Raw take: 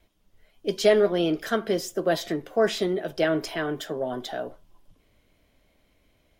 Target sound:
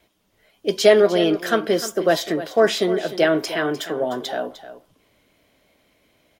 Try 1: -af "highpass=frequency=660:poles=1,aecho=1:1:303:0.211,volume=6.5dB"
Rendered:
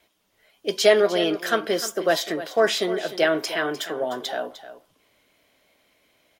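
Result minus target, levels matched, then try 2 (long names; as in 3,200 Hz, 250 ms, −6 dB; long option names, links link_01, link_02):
250 Hz band −2.5 dB
-af "highpass=frequency=220:poles=1,aecho=1:1:303:0.211,volume=6.5dB"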